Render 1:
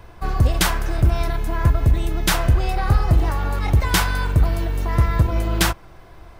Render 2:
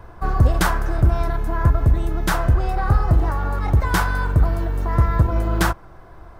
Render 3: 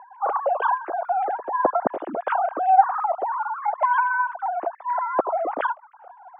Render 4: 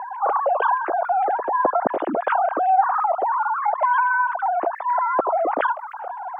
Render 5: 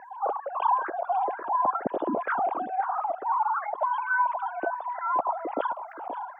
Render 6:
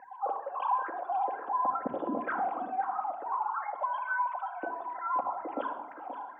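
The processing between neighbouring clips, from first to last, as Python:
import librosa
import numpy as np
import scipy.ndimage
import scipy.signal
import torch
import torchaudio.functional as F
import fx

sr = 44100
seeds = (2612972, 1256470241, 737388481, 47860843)

y1 = fx.high_shelf_res(x, sr, hz=1900.0, db=-7.0, q=1.5)
y1 = fx.rider(y1, sr, range_db=3, speed_s=2.0)
y2 = fx.sine_speech(y1, sr)
y2 = fx.bandpass_q(y2, sr, hz=660.0, q=2.0)
y2 = y2 * librosa.db_to_amplitude(-1.0)
y3 = fx.env_flatten(y2, sr, amount_pct=50)
y3 = y3 * librosa.db_to_amplitude(-3.5)
y4 = fx.phaser_stages(y3, sr, stages=6, low_hz=400.0, high_hz=2100.0, hz=1.1, feedback_pct=30)
y4 = y4 + 10.0 ** (-11.5 / 20.0) * np.pad(y4, (int(525 * sr / 1000.0), 0))[:len(y4)]
y4 = y4 * librosa.db_to_amplitude(-3.5)
y5 = fx.room_shoebox(y4, sr, seeds[0], volume_m3=3700.0, walls='furnished', distance_m=2.1)
y5 = y5 * librosa.db_to_amplitude(-7.0)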